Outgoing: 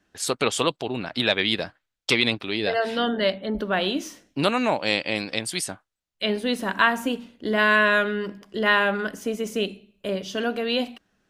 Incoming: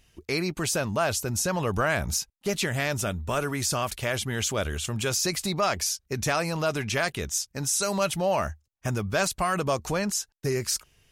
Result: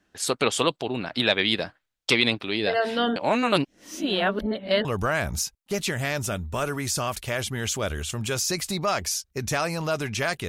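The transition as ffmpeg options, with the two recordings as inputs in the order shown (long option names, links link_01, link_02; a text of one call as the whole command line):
ffmpeg -i cue0.wav -i cue1.wav -filter_complex "[0:a]apad=whole_dur=10.48,atrim=end=10.48,asplit=2[link_01][link_02];[link_01]atrim=end=3.162[link_03];[link_02]atrim=start=3.158:end=4.852,asetpts=PTS-STARTPTS,areverse[link_04];[1:a]atrim=start=1.598:end=7.23[link_05];[link_03][link_04]acrossfade=duration=0.004:curve1=hsin:curve2=hsin[link_06];[link_06][link_05]acrossfade=duration=0.004:curve1=hsin:curve2=hsin" out.wav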